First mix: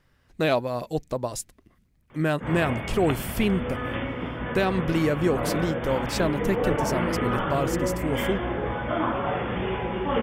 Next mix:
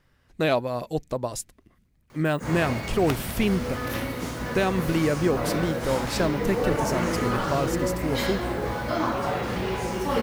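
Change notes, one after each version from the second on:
background: remove brick-wall FIR low-pass 3.6 kHz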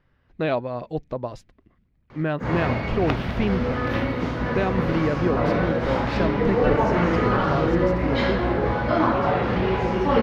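background +6.5 dB; master: add distance through air 270 m

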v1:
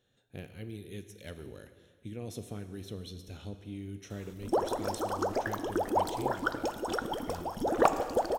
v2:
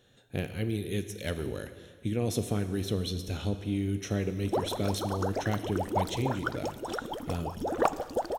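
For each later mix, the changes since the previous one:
speech +11.0 dB; background: send -9.0 dB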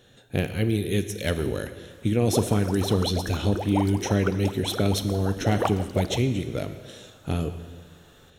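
speech +7.5 dB; background: entry -2.20 s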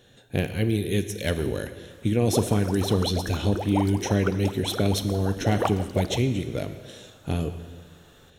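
speech: add band-stop 1.3 kHz, Q 12

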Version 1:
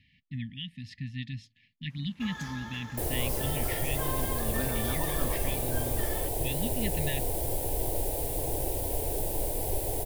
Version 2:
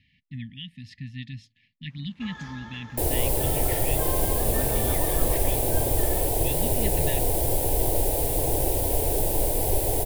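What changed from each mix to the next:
first sound: add distance through air 85 m; second sound +7.0 dB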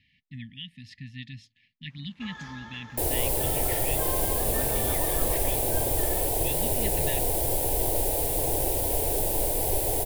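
master: add bass shelf 430 Hz -5 dB

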